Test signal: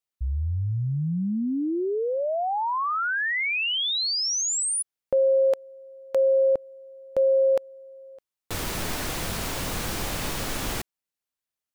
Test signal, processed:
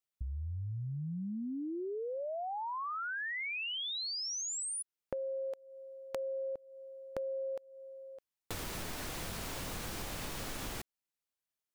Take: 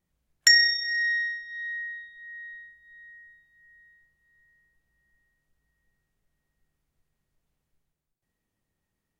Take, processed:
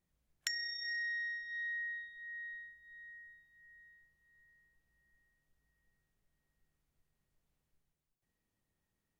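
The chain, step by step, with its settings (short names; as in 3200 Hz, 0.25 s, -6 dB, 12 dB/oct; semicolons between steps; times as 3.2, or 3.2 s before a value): compressor 8:1, threshold -33 dBFS; gain -4 dB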